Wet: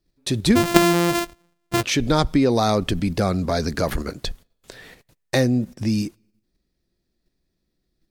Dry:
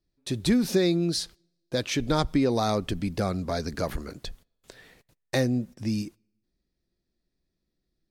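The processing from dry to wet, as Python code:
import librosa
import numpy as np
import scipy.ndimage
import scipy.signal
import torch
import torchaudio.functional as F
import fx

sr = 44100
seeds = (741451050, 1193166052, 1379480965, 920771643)

p1 = fx.sample_sort(x, sr, block=128, at=(0.55, 1.82), fade=0.02)
p2 = fx.level_steps(p1, sr, step_db=19)
p3 = p1 + (p2 * 10.0 ** (2.0 / 20.0))
y = p3 * 10.0 ** (4.0 / 20.0)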